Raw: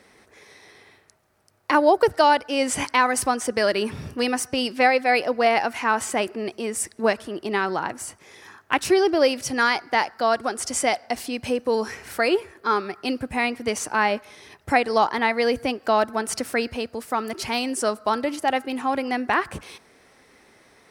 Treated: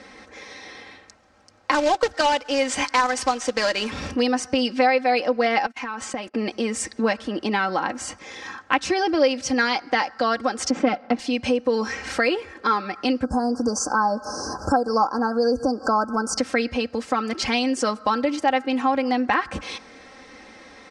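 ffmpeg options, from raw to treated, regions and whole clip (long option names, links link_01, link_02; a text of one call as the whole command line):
ffmpeg -i in.wav -filter_complex "[0:a]asettb=1/sr,asplit=3[link_01][link_02][link_03];[link_01]atrim=end=1.714[link_04];[link_02]atrim=start=1.71:end=4.11,asetpts=PTS-STARTPTS,afade=type=in:duration=0.004:curve=qsin,afade=type=out:start_time=2.396:duration=0.004:curve=qsin,equalizer=frequency=140:width_type=o:width=2.7:gain=-9.5,acompressor=mode=upward:threshold=-31dB:ratio=2.5:attack=3.2:release=140:knee=2.83:detection=peak,acrusher=bits=2:mode=log:mix=0:aa=0.000001[link_05];[link_03]atrim=start=4.106[link_06];[link_04][link_05]acrossfade=duration=0.004:curve1=hsin:curve2=qsin[link_07];[link_07][link_06]acrossfade=duration=0.004:curve1=qsin:curve2=hsin,asettb=1/sr,asplit=3[link_08][link_09][link_10];[link_08]atrim=end=5.664[link_11];[link_09]atrim=start=5.66:end=6.34,asetpts=PTS-STARTPTS,afade=type=in:duration=0.004:curve=qsin,afade=type=out:start_time=0.676:duration=0.004:curve=qsin,agate=range=-30dB:threshold=-32dB:ratio=16:release=100:detection=peak,acompressor=threshold=-34dB:ratio=10:attack=3.2:release=140:knee=1:detection=peak[link_12];[link_10]atrim=start=6.336[link_13];[link_11][link_12]acrossfade=duration=0.004:curve1=hsin:curve2=qsin[link_14];[link_14][link_13]acrossfade=duration=0.004:curve1=qsin:curve2=hsin,asettb=1/sr,asplit=3[link_15][link_16][link_17];[link_15]atrim=end=10.704[link_18];[link_16]atrim=start=10.7:end=11.19,asetpts=PTS-STARTPTS,afade=type=in:duration=0.004:curve=qsin,afade=type=out:start_time=0.486:duration=0.004:curve=qsin,aeval=exprs='if(lt(val(0),0),0.251*val(0),val(0))':channel_layout=same,highpass=150,lowpass=2800,equalizer=frequency=240:width_type=o:width=2.5:gain=11[link_19];[link_17]atrim=start=11.186[link_20];[link_18][link_19]acrossfade=duration=0.004:curve1=hsin:curve2=qsin[link_21];[link_21][link_20]acrossfade=duration=0.004:curve1=qsin:curve2=hsin,asettb=1/sr,asplit=3[link_22][link_23][link_24];[link_22]atrim=end=13.244[link_25];[link_23]atrim=start=13.24:end=16.38,asetpts=PTS-STARTPTS,afade=type=in:duration=0.004:curve=qsin,afade=type=out:start_time=3.136:duration=0.004:curve=qsin,highshelf=frequency=8900:gain=5,acompressor=mode=upward:threshold=-21dB:ratio=2.5:attack=3.2:release=140:knee=2.83:detection=peak,asuperstop=centerf=2700:order=20:qfactor=0.91[link_26];[link_24]atrim=start=16.376[link_27];[link_25][link_26]acrossfade=duration=0.004:curve1=hsin:curve2=qsin[link_28];[link_28][link_27]acrossfade=duration=0.004:curve1=qsin:curve2=hsin,lowpass=frequency=6900:width=0.5412,lowpass=frequency=6900:width=1.3066,aecho=1:1:3.8:0.68,acompressor=threshold=-33dB:ratio=2,volume=8dB" out.wav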